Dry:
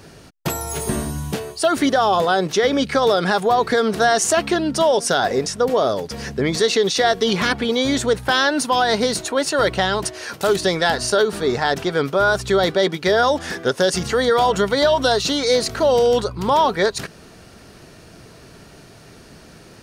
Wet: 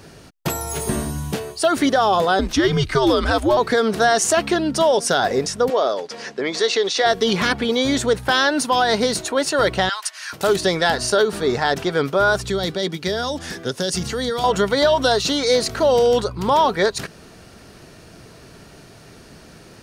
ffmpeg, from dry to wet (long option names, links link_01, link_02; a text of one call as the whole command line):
ffmpeg -i in.wav -filter_complex "[0:a]asettb=1/sr,asplit=3[link_01][link_02][link_03];[link_01]atrim=end=2.394[link_04];[link_02]atrim=start=2.39:end=3.57,asetpts=PTS-STARTPTS,afade=type=in:duration=0.004:curve=qsin,afade=type=out:start_time=1.176:duration=0.004:curve=qsin,afreqshift=-120[link_05];[link_03]atrim=start=3.566[link_06];[link_04][link_05]acrossfade=duration=0.004:curve1=hsin:curve2=qsin[link_07];[link_07][link_06]acrossfade=duration=0.004:curve1=qsin:curve2=hsin,asettb=1/sr,asplit=3[link_08][link_09][link_10];[link_08]atrim=end=5.704[link_11];[link_09]atrim=start=5.7:end=7.06,asetpts=PTS-STARTPTS,afade=type=in:duration=0.004:curve=qsin,afade=type=out:start_time=1.356:duration=0.004:curve=qsin,highpass=380,lowpass=6600[link_12];[link_10]atrim=start=7.056[link_13];[link_11][link_12]acrossfade=duration=0.004:curve1=hsin:curve2=qsin[link_14];[link_14][link_13]acrossfade=duration=0.004:curve1=qsin:curve2=hsin,asettb=1/sr,asplit=3[link_15][link_16][link_17];[link_15]atrim=end=9.894[link_18];[link_16]atrim=start=9.89:end=10.33,asetpts=PTS-STARTPTS,afade=type=in:duration=0.004:curve=qsin,afade=type=out:start_time=0.436:duration=0.004:curve=qsin,highpass=frequency=1100:width=0.5412,highpass=frequency=1100:width=1.3066[link_19];[link_17]atrim=start=10.326[link_20];[link_18][link_19]acrossfade=duration=0.004:curve1=hsin:curve2=qsin[link_21];[link_21][link_20]acrossfade=duration=0.004:curve1=qsin:curve2=hsin,asettb=1/sr,asplit=3[link_22][link_23][link_24];[link_22]atrim=end=12.444[link_25];[link_23]atrim=start=12.44:end=14.44,asetpts=PTS-STARTPTS,afade=type=in:duration=0.004:curve=qsin,afade=type=out:start_time=1.996:duration=0.004:curve=qsin,acrossover=split=300|3000[link_26][link_27][link_28];[link_27]acompressor=threshold=-42dB:ratio=1.5:attack=3.2:release=140:knee=2.83:detection=peak[link_29];[link_26][link_29][link_28]amix=inputs=3:normalize=0[link_30];[link_24]atrim=start=14.436[link_31];[link_25][link_30]acrossfade=duration=0.004:curve1=hsin:curve2=qsin[link_32];[link_32][link_31]acrossfade=duration=0.004:curve1=qsin:curve2=hsin" out.wav